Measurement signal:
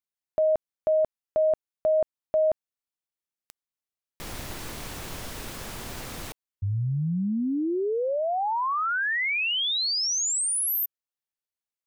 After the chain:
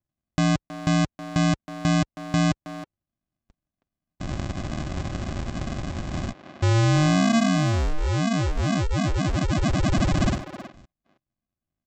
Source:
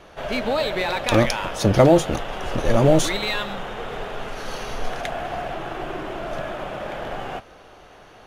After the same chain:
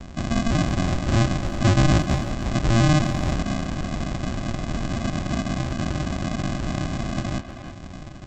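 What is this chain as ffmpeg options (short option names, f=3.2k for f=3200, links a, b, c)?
-filter_complex "[0:a]highpass=45,bass=f=250:g=8,treble=f=4k:g=4,asplit=2[a][b];[b]acompressor=threshold=-32dB:ratio=6:attack=5.2:release=271,volume=2.5dB[c];[a][c]amix=inputs=2:normalize=0,asoftclip=type=tanh:threshold=-13.5dB,aresample=16000,acrusher=samples=35:mix=1:aa=0.000001,aresample=44100,asplit=2[d][e];[e]adelay=320,highpass=300,lowpass=3.4k,asoftclip=type=hard:threshold=-19.5dB,volume=-8dB[f];[d][f]amix=inputs=2:normalize=0"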